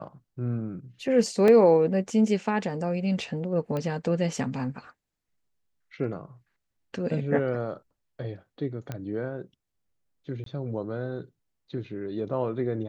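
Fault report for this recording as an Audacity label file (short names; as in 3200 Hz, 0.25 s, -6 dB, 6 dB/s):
1.480000	1.480000	gap 2 ms
3.770000	3.770000	pop -19 dBFS
8.920000	8.920000	pop -20 dBFS
10.440000	10.460000	gap 23 ms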